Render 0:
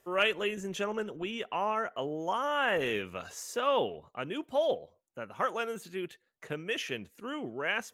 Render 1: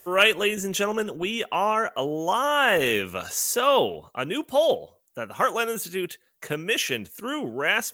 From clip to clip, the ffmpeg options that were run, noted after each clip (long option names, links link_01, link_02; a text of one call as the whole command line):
ffmpeg -i in.wav -af "aemphasis=mode=production:type=50fm,volume=8dB" out.wav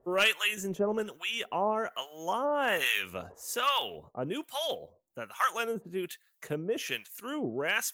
ffmpeg -i in.wav -filter_complex "[0:a]asoftclip=type=hard:threshold=-10.5dB,acrossover=split=930[link_01][link_02];[link_01]aeval=exprs='val(0)*(1-1/2+1/2*cos(2*PI*1.2*n/s))':channel_layout=same[link_03];[link_02]aeval=exprs='val(0)*(1-1/2-1/2*cos(2*PI*1.2*n/s))':channel_layout=same[link_04];[link_03][link_04]amix=inputs=2:normalize=0,volume=-1.5dB" out.wav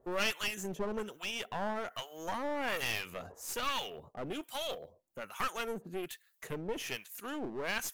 ffmpeg -i in.wav -filter_complex "[0:a]asplit=2[link_01][link_02];[link_02]acompressor=threshold=-36dB:ratio=6,volume=-2dB[link_03];[link_01][link_03]amix=inputs=2:normalize=0,aeval=exprs='clip(val(0),-1,0.0188)':channel_layout=same,volume=-5.5dB" out.wav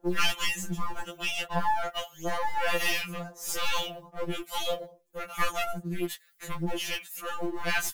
ffmpeg -i in.wav -filter_complex "[0:a]asplit=2[link_01][link_02];[link_02]acrusher=bits=5:mode=log:mix=0:aa=0.000001,volume=-3dB[link_03];[link_01][link_03]amix=inputs=2:normalize=0,afftfilt=real='re*2.83*eq(mod(b,8),0)':imag='im*2.83*eq(mod(b,8),0)':win_size=2048:overlap=0.75,volume=4.5dB" out.wav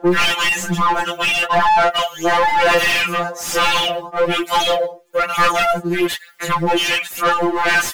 ffmpeg -i in.wav -filter_complex "[0:a]aphaser=in_gain=1:out_gain=1:delay=2.6:decay=0.47:speed=1.1:type=sinusoidal,asplit=2[link_01][link_02];[link_02]highpass=frequency=720:poles=1,volume=28dB,asoftclip=type=tanh:threshold=-8dB[link_03];[link_01][link_03]amix=inputs=2:normalize=0,lowpass=frequency=2000:poles=1,volume=-6dB,volume=3dB" out.wav